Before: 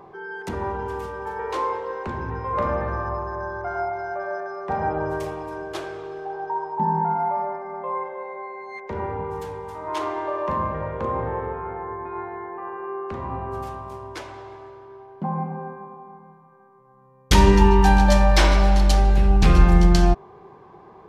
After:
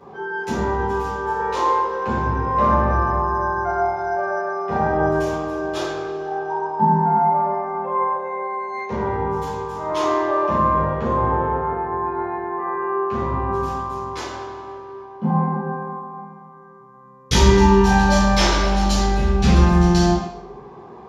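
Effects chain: compression 1.5:1, threshold -23 dBFS, peak gain reduction 6 dB; reverberation RT60 0.75 s, pre-delay 5 ms, DRR -10 dB; trim -8 dB

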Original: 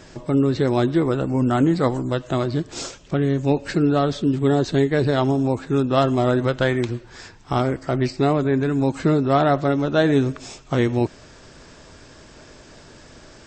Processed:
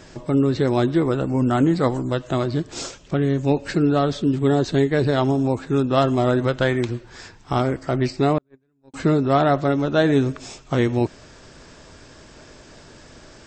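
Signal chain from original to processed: 8.38–8.94 s: gate -13 dBFS, range -47 dB

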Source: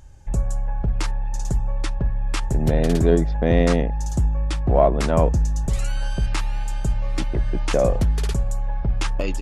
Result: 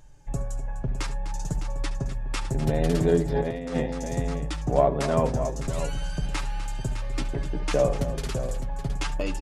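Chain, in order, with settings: multi-tap echo 69/74/251/608 ms -18/-18.5/-12.5/-10.5 dB; flange 0.65 Hz, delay 6.6 ms, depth 1.3 ms, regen +32%; 3.32–3.77 s: compressor with a negative ratio -25 dBFS, ratio -0.5; peaking EQ 70 Hz -15 dB 0.51 oct

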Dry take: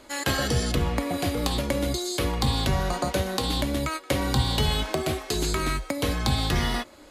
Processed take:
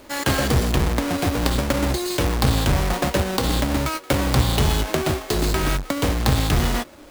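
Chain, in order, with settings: square wave that keeps the level

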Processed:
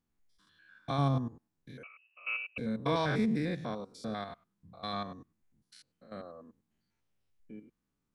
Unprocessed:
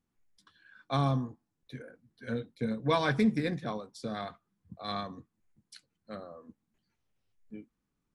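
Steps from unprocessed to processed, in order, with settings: spectrogram pixelated in time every 100 ms; 1.83–2.58 s: frequency inversion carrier 2.8 kHz

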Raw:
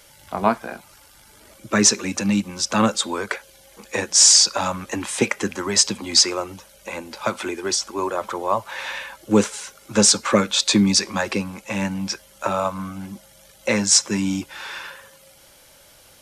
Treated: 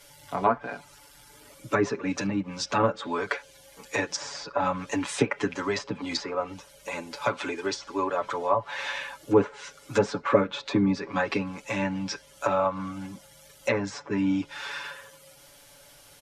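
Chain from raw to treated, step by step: low-pass that closes with the level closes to 1.4 kHz, closed at -16 dBFS; comb 7 ms, depth 92%; trim -5 dB

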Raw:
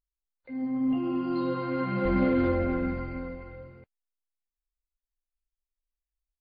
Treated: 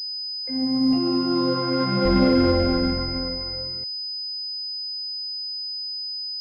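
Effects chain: class-D stage that switches slowly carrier 5 kHz; trim +6.5 dB

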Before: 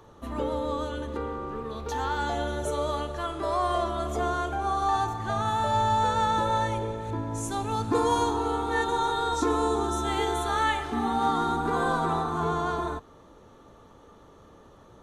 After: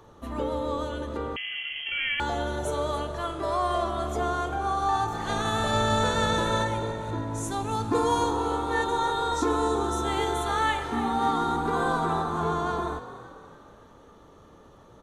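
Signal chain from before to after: 5.12–6.62 s: spectral peaks clipped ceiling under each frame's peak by 15 dB; on a send: frequency-shifting echo 286 ms, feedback 47%, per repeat +46 Hz, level -14 dB; 1.36–2.20 s: on the sum: frequency inversion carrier 3.2 kHz

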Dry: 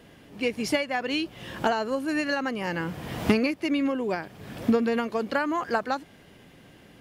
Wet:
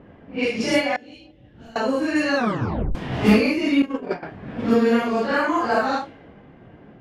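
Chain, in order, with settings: phase randomisation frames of 200 ms; 2.36 s: tape stop 0.59 s; 3.82–4.23 s: gate -26 dBFS, range -17 dB; level-controlled noise filter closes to 1.2 kHz, open at -21.5 dBFS; 0.96–1.76 s: amplifier tone stack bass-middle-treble 10-0-1; feedback echo behind a low-pass 173 ms, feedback 59%, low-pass 520 Hz, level -23.5 dB; trim +6 dB

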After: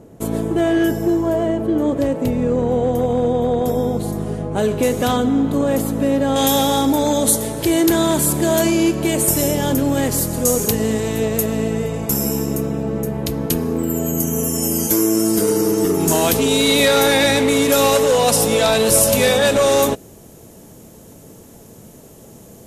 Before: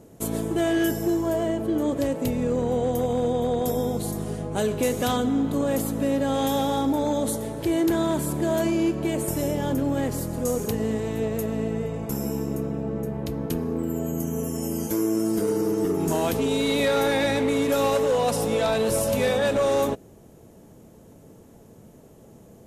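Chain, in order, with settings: treble shelf 2.9 kHz -8 dB, from 4.63 s -3 dB, from 6.36 s +10 dB; trim +6.5 dB

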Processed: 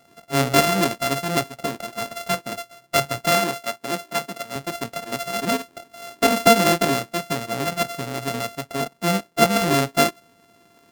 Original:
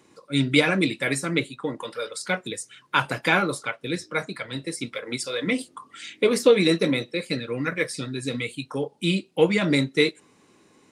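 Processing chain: sorted samples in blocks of 64 samples; 3.31–4.56 s: high-pass 180 Hz 12 dB/octave; trim +2 dB

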